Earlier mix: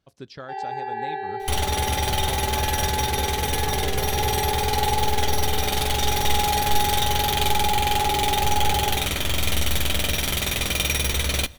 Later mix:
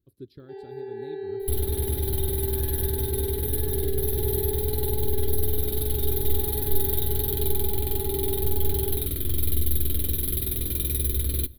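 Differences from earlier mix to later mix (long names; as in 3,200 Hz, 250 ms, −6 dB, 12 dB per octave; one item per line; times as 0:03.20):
first sound +5.5 dB
master: add drawn EQ curve 110 Hz 0 dB, 190 Hz −7 dB, 360 Hz +2 dB, 730 Hz −28 dB, 1,400 Hz −20 dB, 2,700 Hz −23 dB, 4,000 Hz −11 dB, 6,200 Hz −30 dB, 12,000 Hz +5 dB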